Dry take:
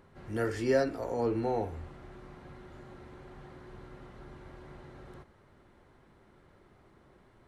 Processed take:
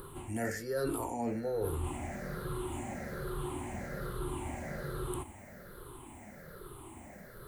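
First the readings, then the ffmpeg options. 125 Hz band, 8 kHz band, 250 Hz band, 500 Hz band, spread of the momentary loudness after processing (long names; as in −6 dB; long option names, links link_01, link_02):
+2.5 dB, can't be measured, −1.0 dB, −4.0 dB, 16 LU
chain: -af "afftfilt=real='re*pow(10,16/40*sin(2*PI*(0.62*log(max(b,1)*sr/1024/100)/log(2)-(-1.2)*(pts-256)/sr)))':imag='im*pow(10,16/40*sin(2*PI*(0.62*log(max(b,1)*sr/1024/100)/log(2)-(-1.2)*(pts-256)/sr)))':win_size=1024:overlap=0.75,areverse,acompressor=threshold=-39dB:ratio=16,areverse,aexciter=amount=8.9:drive=4.6:freq=7600,volume=8dB"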